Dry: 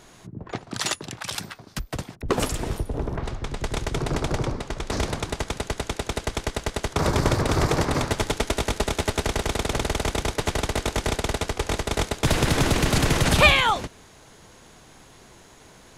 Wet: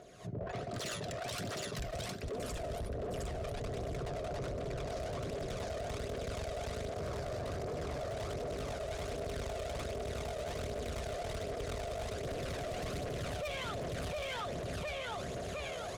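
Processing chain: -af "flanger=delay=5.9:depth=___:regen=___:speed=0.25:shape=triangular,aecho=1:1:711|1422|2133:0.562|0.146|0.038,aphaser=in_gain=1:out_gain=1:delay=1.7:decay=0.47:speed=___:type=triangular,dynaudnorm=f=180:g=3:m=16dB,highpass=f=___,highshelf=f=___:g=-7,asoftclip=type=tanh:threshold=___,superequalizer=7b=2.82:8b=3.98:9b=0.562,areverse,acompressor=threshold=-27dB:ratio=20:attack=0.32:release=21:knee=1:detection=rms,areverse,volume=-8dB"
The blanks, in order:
7.5, -83, 1.3, 50, 9200, -18dB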